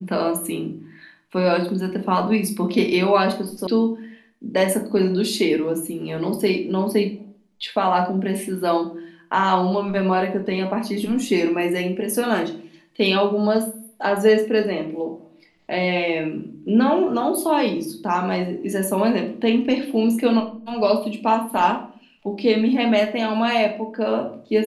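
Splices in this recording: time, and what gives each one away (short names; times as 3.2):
3.67 sound cut off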